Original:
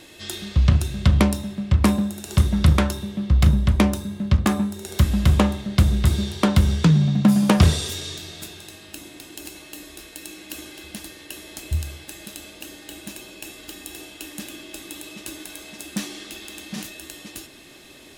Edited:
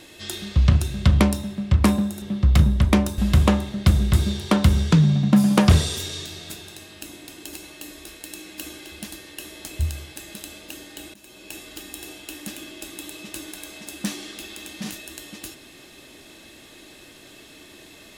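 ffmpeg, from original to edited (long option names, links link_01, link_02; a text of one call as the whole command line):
ffmpeg -i in.wav -filter_complex "[0:a]asplit=4[link_01][link_02][link_03][link_04];[link_01]atrim=end=2.222[link_05];[link_02]atrim=start=3.088:end=4.052[link_06];[link_03]atrim=start=5.098:end=13.06,asetpts=PTS-STARTPTS,afade=type=out:start_time=7.958:duration=0.004:curve=hsin:silence=0.0944061[link_07];[link_04]atrim=start=13.06,asetpts=PTS-STARTPTS,afade=type=in:duration=0.4:silence=0.0944061[link_08];[link_05][link_06]acrossfade=duration=0.004:curve1=hsin:curve2=hsin[link_09];[link_07][link_08]concat=n=2:v=0:a=1[link_10];[link_09][link_10]acrossfade=duration=0.004:curve1=hsin:curve2=hsin" out.wav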